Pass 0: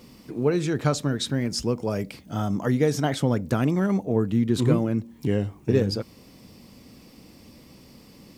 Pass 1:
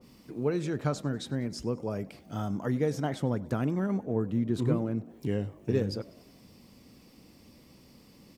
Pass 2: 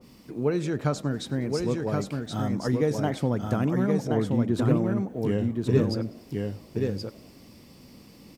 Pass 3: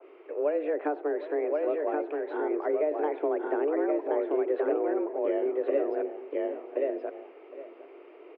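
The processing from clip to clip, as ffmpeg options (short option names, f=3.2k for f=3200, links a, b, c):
-filter_complex "[0:a]asplit=5[a][b][c][d][e];[b]adelay=97,afreqshift=53,volume=-22.5dB[f];[c]adelay=194,afreqshift=106,volume=-26.9dB[g];[d]adelay=291,afreqshift=159,volume=-31.4dB[h];[e]adelay=388,afreqshift=212,volume=-35.8dB[i];[a][f][g][h][i]amix=inputs=5:normalize=0,adynamicequalizer=threshold=0.00631:dfrequency=1900:dqfactor=0.7:tfrequency=1900:tqfactor=0.7:attack=5:release=100:ratio=0.375:range=3.5:mode=cutabove:tftype=highshelf,volume=-6.5dB"
-af "aecho=1:1:1075:0.668,volume=3.5dB"
-filter_complex "[0:a]highpass=f=190:t=q:w=0.5412,highpass=f=190:t=q:w=1.307,lowpass=f=2.4k:t=q:w=0.5176,lowpass=f=2.4k:t=q:w=0.7071,lowpass=f=2.4k:t=q:w=1.932,afreqshift=150,asplit=2[a][b];[b]adelay=758,volume=-17dB,highshelf=f=4k:g=-17.1[c];[a][c]amix=inputs=2:normalize=0,acrossover=split=730|1800[d][e][f];[d]acompressor=threshold=-27dB:ratio=4[g];[e]acompressor=threshold=-45dB:ratio=4[h];[f]acompressor=threshold=-54dB:ratio=4[i];[g][h][i]amix=inputs=3:normalize=0,volume=2.5dB"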